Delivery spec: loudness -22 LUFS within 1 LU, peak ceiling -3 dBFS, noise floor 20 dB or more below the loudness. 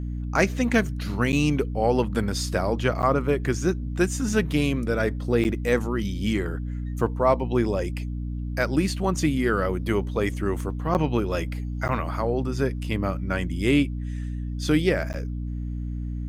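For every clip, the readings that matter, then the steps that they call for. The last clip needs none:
dropouts 6; longest dropout 9.1 ms; hum 60 Hz; harmonics up to 300 Hz; hum level -27 dBFS; loudness -25.5 LUFS; peak -6.5 dBFS; loudness target -22.0 LUFS
-> interpolate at 1.32/3.02/5.44/10.94/11.88/15.13, 9.1 ms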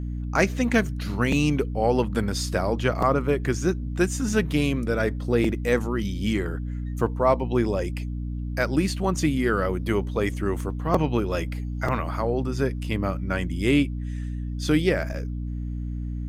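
dropouts 0; hum 60 Hz; harmonics up to 300 Hz; hum level -27 dBFS
-> de-hum 60 Hz, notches 5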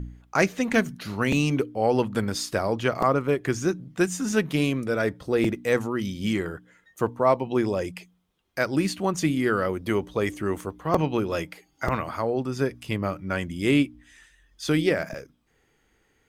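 hum none; loudness -26.0 LUFS; peak -5.5 dBFS; loudness target -22.0 LUFS
-> gain +4 dB; limiter -3 dBFS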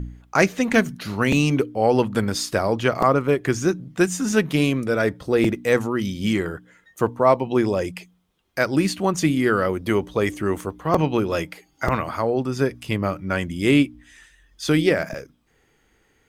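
loudness -22.0 LUFS; peak -3.0 dBFS; noise floor -63 dBFS

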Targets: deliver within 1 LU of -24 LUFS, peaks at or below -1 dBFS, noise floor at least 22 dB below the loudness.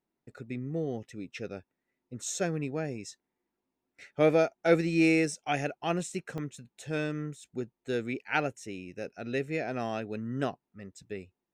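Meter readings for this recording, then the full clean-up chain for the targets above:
dropouts 1; longest dropout 2.6 ms; loudness -31.5 LUFS; peak -10.5 dBFS; loudness target -24.0 LUFS
-> interpolate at 6.38, 2.6 ms; gain +7.5 dB

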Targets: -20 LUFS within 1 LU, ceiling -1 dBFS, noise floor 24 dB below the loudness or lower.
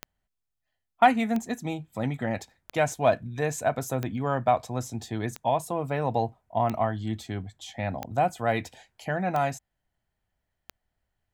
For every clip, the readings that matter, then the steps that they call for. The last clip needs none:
clicks 9; loudness -28.0 LUFS; peak -7.0 dBFS; loudness target -20.0 LUFS
-> de-click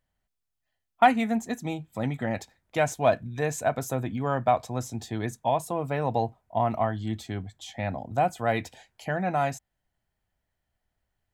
clicks 0; loudness -28.0 LUFS; peak -7.0 dBFS; loudness target -20.0 LUFS
-> gain +8 dB; limiter -1 dBFS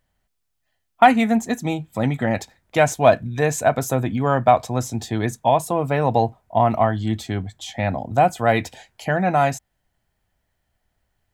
loudness -20.5 LUFS; peak -1.0 dBFS; noise floor -74 dBFS

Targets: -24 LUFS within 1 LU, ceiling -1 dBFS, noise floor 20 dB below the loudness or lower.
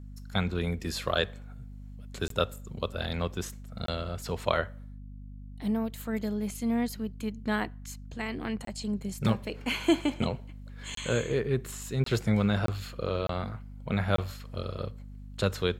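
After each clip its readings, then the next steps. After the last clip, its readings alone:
dropouts 8; longest dropout 23 ms; hum 50 Hz; harmonics up to 250 Hz; hum level -41 dBFS; loudness -31.5 LUFS; peak -9.5 dBFS; loudness target -24.0 LUFS
-> interpolate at 2.28/3.86/8.65/10.95/12.04/12.66/13.27/14.16, 23 ms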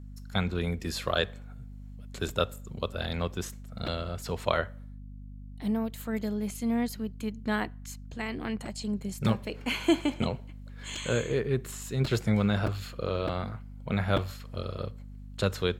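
dropouts 0; hum 50 Hz; harmonics up to 250 Hz; hum level -41 dBFS
-> de-hum 50 Hz, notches 5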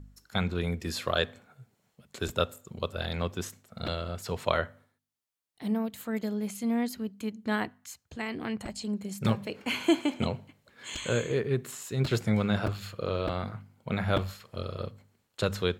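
hum none; loudness -32.0 LUFS; peak -10.0 dBFS; loudness target -24.0 LUFS
-> gain +8 dB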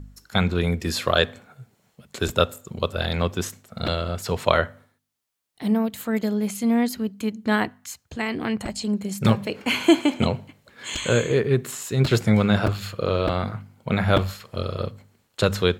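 loudness -24.0 LUFS; peak -2.0 dBFS; noise floor -68 dBFS

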